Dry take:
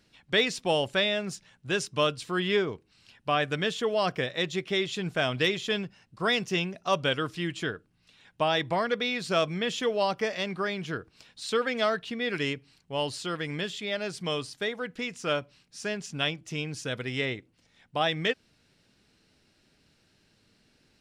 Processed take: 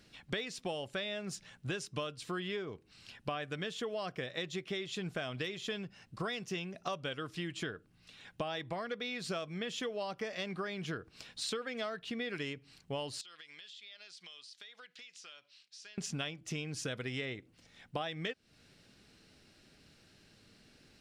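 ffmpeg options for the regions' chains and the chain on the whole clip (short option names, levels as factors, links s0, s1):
-filter_complex "[0:a]asettb=1/sr,asplit=3[s0][s1][s2];[s0]atrim=end=13.214[s3];[s1]atrim=start=13.21:end=15.98,asetpts=PTS-STARTPTS,afade=t=in:d=0.004:c=qsin,afade=t=out:st=2.766:d=0.004:c=qsin,bandpass=f=4000:t=q:w=1.5,acompressor=threshold=0.00251:ratio=8:attack=3.2:release=140:knee=1:detection=peak[s4];[s2]atrim=start=15.976[s5];[s3][s4]acrossfade=d=0.004:c1=hsin:c2=qsin[s6];[s6][s5]acrossfade=d=0.004:c1=qsin:c2=hsin,acompressor=threshold=0.0126:ratio=12,bandreject=f=930:w=14,volume=1.41"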